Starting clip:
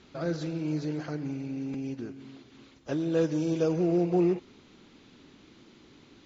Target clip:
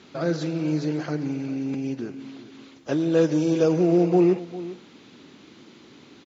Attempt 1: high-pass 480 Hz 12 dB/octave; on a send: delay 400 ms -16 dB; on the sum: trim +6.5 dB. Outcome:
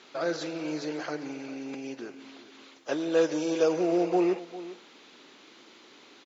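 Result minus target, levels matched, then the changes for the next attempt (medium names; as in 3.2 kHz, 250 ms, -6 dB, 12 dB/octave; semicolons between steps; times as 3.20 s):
125 Hz band -11.5 dB
change: high-pass 130 Hz 12 dB/octave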